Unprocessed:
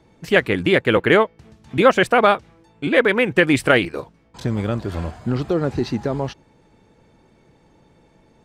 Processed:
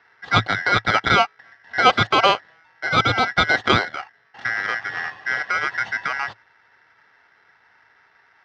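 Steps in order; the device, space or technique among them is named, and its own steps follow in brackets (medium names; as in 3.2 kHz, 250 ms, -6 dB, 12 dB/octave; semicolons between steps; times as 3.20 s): ring modulator pedal into a guitar cabinet (polarity switched at an audio rate 1.8 kHz; cabinet simulation 81–3700 Hz, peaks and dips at 110 Hz +8 dB, 750 Hz +9 dB, 2.4 kHz -10 dB)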